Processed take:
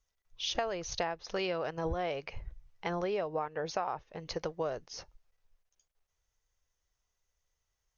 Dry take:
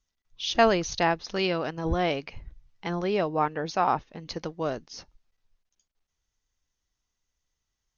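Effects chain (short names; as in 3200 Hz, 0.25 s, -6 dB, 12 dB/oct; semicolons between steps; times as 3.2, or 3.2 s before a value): ten-band EQ 250 Hz -11 dB, 500 Hz +5 dB, 4000 Hz -4 dB; compressor 12:1, threshold -30 dBFS, peak gain reduction 16.5 dB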